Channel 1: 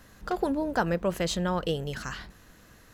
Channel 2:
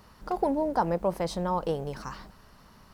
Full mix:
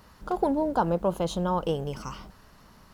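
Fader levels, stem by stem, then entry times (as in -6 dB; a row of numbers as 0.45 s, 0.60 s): -9.0 dB, 0.0 dB; 0.00 s, 0.00 s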